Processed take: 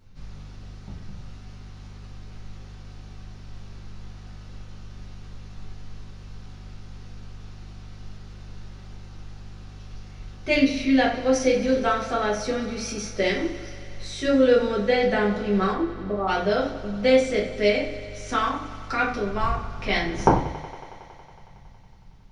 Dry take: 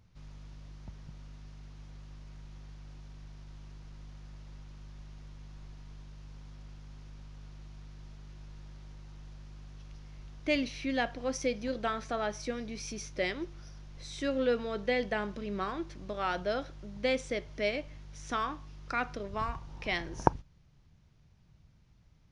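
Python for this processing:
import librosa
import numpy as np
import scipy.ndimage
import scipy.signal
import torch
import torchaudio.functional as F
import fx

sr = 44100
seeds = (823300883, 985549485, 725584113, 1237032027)

y = fx.steep_lowpass(x, sr, hz=1200.0, slope=96, at=(15.72, 16.27), fade=0.02)
y = fx.echo_thinned(y, sr, ms=92, feedback_pct=84, hz=160.0, wet_db=-17)
y = fx.room_shoebox(y, sr, seeds[0], volume_m3=34.0, walls='mixed', distance_m=1.1)
y = y * 10.0 ** (2.5 / 20.0)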